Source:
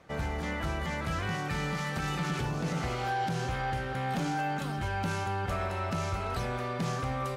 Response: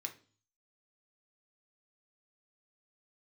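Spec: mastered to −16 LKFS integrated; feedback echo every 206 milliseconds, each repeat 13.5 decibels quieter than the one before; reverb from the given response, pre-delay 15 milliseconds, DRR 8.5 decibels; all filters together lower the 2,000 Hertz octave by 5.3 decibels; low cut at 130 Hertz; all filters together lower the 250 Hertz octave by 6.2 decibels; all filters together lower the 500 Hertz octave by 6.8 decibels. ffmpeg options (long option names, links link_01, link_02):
-filter_complex "[0:a]highpass=130,equalizer=frequency=250:width_type=o:gain=-7,equalizer=frequency=500:width_type=o:gain=-6.5,equalizer=frequency=2000:width_type=o:gain=-6.5,aecho=1:1:206|412:0.211|0.0444,asplit=2[link_01][link_02];[1:a]atrim=start_sample=2205,adelay=15[link_03];[link_02][link_03]afir=irnorm=-1:irlink=0,volume=-7dB[link_04];[link_01][link_04]amix=inputs=2:normalize=0,volume=21dB"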